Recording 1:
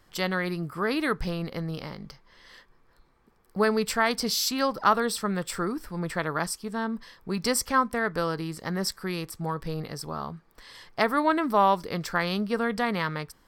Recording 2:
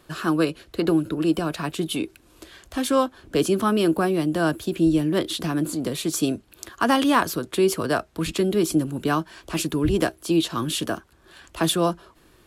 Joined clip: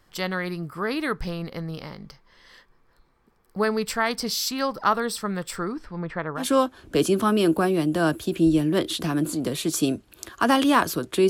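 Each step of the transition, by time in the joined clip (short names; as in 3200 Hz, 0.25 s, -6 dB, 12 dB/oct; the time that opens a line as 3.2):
recording 1
5.56–6.47 LPF 9100 Hz -> 1100 Hz
6.41 switch to recording 2 from 2.81 s, crossfade 0.12 s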